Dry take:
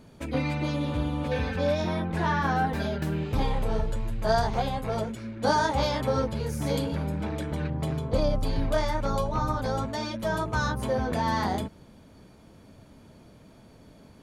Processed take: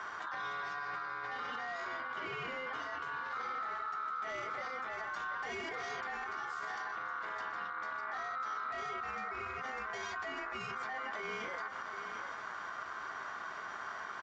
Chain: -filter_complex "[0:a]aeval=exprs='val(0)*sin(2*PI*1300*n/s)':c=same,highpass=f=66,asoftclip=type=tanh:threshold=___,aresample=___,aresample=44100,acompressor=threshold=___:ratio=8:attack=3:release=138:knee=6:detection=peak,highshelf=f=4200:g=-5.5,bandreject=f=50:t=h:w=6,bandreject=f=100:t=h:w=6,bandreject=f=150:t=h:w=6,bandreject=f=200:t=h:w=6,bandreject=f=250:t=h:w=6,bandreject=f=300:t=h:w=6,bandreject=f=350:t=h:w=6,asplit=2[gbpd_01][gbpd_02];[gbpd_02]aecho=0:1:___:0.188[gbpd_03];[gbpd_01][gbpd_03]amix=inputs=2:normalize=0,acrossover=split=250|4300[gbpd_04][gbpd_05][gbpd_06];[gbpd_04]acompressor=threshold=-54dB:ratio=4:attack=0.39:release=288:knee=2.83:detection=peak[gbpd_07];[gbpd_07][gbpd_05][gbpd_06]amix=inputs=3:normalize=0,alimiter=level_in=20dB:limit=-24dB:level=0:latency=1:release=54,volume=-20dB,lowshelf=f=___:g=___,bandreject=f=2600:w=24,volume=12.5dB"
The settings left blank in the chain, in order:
-20dB, 16000, -44dB, 733, 140, -4